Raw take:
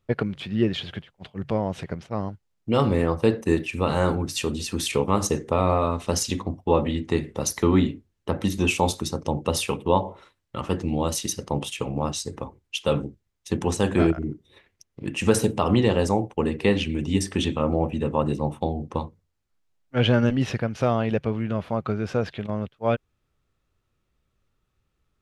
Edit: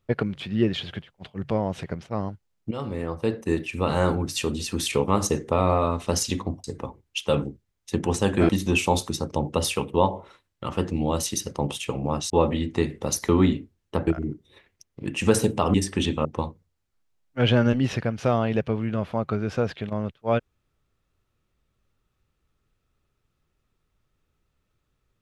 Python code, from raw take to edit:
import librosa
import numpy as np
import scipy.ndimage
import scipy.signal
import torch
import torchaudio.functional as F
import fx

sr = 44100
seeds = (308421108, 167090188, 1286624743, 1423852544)

y = fx.edit(x, sr, fx.fade_in_from(start_s=2.71, length_s=1.29, floor_db=-13.5),
    fx.swap(start_s=6.64, length_s=1.77, other_s=12.22, other_length_s=1.85),
    fx.cut(start_s=15.74, length_s=1.39),
    fx.cut(start_s=17.64, length_s=1.18), tone=tone)